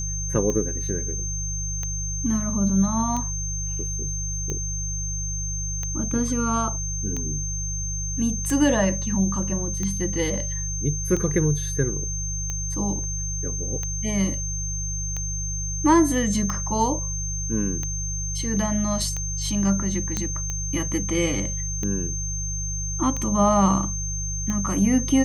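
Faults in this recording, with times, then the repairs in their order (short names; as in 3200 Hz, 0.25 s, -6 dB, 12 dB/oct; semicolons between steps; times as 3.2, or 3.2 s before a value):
hum 50 Hz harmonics 3 -30 dBFS
tick 45 rpm -16 dBFS
tone 6300 Hz -29 dBFS
20.17 pop -11 dBFS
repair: de-click; de-hum 50 Hz, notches 3; notch 6300 Hz, Q 30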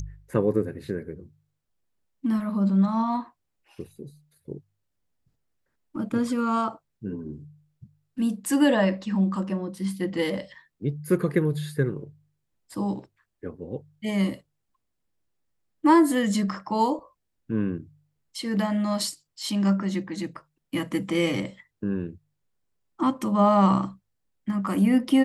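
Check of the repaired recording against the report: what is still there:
none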